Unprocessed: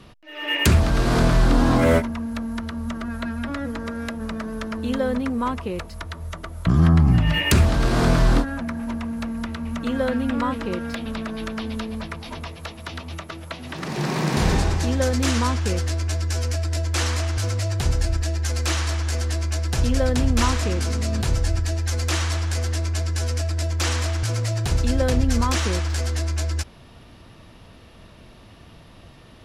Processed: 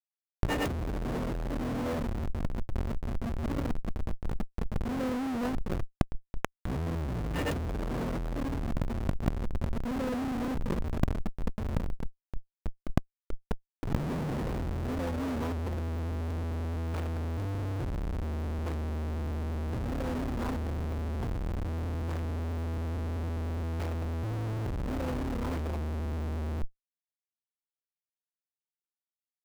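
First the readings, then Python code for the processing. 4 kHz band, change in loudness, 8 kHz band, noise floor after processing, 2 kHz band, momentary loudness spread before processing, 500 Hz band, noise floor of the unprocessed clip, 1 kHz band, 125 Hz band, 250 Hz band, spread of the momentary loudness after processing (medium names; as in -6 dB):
-19.0 dB, -11.5 dB, -22.0 dB, under -85 dBFS, -14.5 dB, 13 LU, -10.5 dB, -47 dBFS, -11.0 dB, -11.0 dB, -9.5 dB, 5 LU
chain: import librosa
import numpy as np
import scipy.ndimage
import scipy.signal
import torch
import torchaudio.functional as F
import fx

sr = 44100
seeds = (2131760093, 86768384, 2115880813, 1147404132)

y = fx.small_body(x, sr, hz=(260.0, 490.0), ring_ms=70, db=7)
y = fx.schmitt(y, sr, flips_db=-21.5)
y = fx.high_shelf(y, sr, hz=2100.0, db=-10.5)
y = fx.over_compress(y, sr, threshold_db=-28.0, ratio=-0.5)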